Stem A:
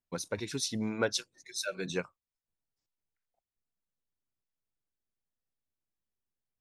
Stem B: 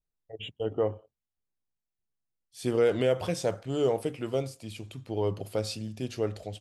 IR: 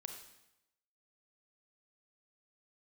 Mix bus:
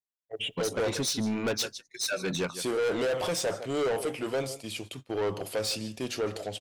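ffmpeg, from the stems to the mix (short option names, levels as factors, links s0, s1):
-filter_complex "[0:a]adelay=450,volume=1.26,asplit=2[s0][s1];[s1]volume=0.126[s2];[1:a]highpass=f=480:p=1,volume=1.26,asplit=3[s3][s4][s5];[s4]volume=0.0668[s6];[s5]volume=0.106[s7];[2:a]atrim=start_sample=2205[s8];[s6][s8]afir=irnorm=-1:irlink=0[s9];[s2][s7]amix=inputs=2:normalize=0,aecho=0:1:155:1[s10];[s0][s3][s9][s10]amix=inputs=4:normalize=0,agate=range=0.112:threshold=0.00447:ratio=16:detection=peak,acontrast=75,asoftclip=type=tanh:threshold=0.0562"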